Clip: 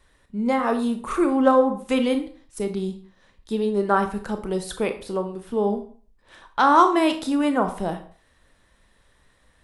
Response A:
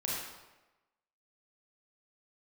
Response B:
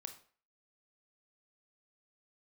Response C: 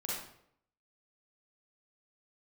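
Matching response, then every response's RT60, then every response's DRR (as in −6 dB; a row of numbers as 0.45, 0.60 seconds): B; 1.1, 0.45, 0.70 seconds; −5.5, 7.0, −6.5 decibels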